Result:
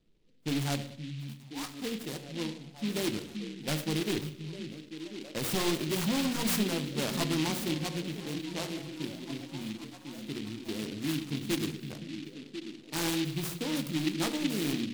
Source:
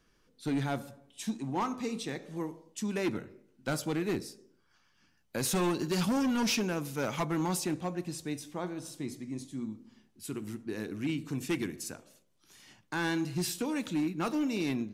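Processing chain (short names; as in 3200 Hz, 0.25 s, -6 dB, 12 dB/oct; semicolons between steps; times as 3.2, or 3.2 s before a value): notches 60/120/180/240/300/360/420/480/540 Hz; low-pass opened by the level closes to 540 Hz, open at -27 dBFS; 1.24–1.82 passive tone stack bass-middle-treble 10-0-10; delay with a stepping band-pass 0.522 s, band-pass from 170 Hz, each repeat 0.7 oct, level -5 dB; on a send at -12 dB: reverb RT60 0.55 s, pre-delay 6 ms; on the sum: noise-modulated delay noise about 3000 Hz, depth 0.17 ms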